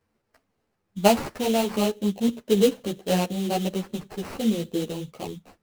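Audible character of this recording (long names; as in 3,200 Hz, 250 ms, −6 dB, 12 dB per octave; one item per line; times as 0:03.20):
aliases and images of a low sample rate 3,500 Hz, jitter 20%
a shimmering, thickened sound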